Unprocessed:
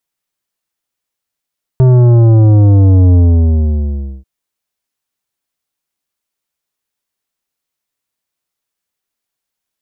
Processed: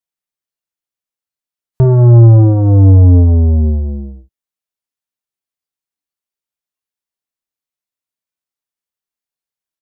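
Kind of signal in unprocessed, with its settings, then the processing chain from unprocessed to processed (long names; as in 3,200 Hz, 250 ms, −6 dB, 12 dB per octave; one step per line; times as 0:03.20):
bass drop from 130 Hz, over 2.44 s, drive 11 dB, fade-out 1.09 s, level −5 dB
noise reduction from a noise print of the clip's start 11 dB
ambience of single reflections 34 ms −12 dB, 52 ms −12.5 dB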